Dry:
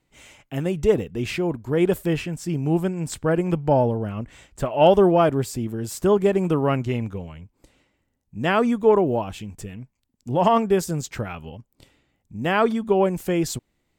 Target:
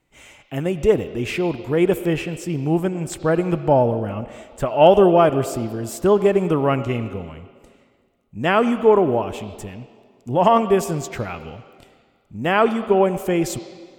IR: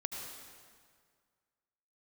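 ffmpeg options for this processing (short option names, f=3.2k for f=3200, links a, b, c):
-filter_complex "[0:a]asplit=2[a][b];[b]highpass=340,equalizer=f=450:t=q:w=4:g=-5,equalizer=f=950:t=q:w=4:g=-6,equalizer=f=1.7k:t=q:w=4:g=-8,lowpass=f=4.5k:w=0.5412,lowpass=f=4.5k:w=1.3066[c];[1:a]atrim=start_sample=2205[d];[c][d]afir=irnorm=-1:irlink=0,volume=-5dB[e];[a][e]amix=inputs=2:normalize=0,volume=1dB"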